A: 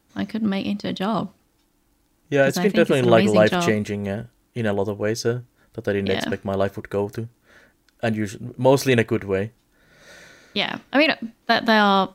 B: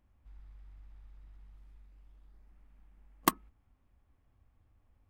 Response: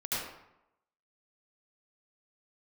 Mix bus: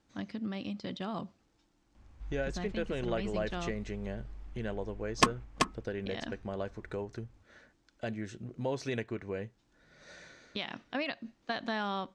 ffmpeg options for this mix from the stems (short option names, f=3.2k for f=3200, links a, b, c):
-filter_complex "[0:a]acompressor=threshold=-33dB:ratio=2,volume=-7dB[a];[1:a]aeval=exprs='0.335*sin(PI/2*2.82*val(0)/0.335)':c=same,adelay=1950,volume=-2dB,asplit=2[b][c];[c]volume=-4.5dB,aecho=0:1:383:1[d];[a][b][d]amix=inputs=3:normalize=0,lowpass=f=7.2k:w=0.5412,lowpass=f=7.2k:w=1.3066"